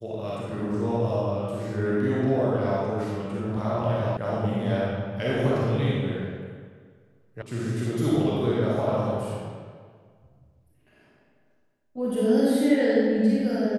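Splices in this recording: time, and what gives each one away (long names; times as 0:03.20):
0:04.17: cut off before it has died away
0:07.42: cut off before it has died away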